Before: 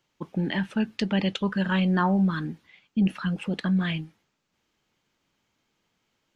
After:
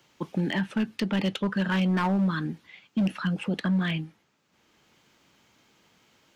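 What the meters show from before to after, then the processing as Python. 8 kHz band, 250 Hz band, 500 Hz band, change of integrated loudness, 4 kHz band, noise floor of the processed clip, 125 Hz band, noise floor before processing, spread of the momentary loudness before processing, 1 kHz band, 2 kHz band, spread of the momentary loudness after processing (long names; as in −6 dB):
can't be measured, −1.5 dB, −1.5 dB, −1.5 dB, −1.0 dB, −69 dBFS, −1.0 dB, −76 dBFS, 12 LU, −2.0 dB, −0.5 dB, 9 LU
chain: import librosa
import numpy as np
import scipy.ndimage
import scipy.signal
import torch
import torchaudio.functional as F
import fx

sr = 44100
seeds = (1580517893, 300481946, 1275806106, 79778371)

y = fx.highpass(x, sr, hz=79.0, slope=6)
y = np.clip(y, -10.0 ** (-20.0 / 20.0), 10.0 ** (-20.0 / 20.0))
y = fx.band_squash(y, sr, depth_pct=40)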